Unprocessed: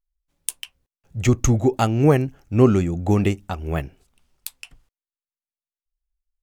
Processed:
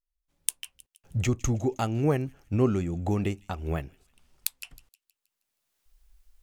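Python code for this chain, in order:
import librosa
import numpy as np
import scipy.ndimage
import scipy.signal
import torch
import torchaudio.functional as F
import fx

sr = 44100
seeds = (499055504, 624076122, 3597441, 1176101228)

p1 = fx.recorder_agc(x, sr, target_db=-11.5, rise_db_per_s=20.0, max_gain_db=30)
p2 = p1 + fx.echo_wet_highpass(p1, sr, ms=158, feedback_pct=46, hz=3200.0, wet_db=-19, dry=0)
y = F.gain(torch.from_numpy(p2), -9.0).numpy()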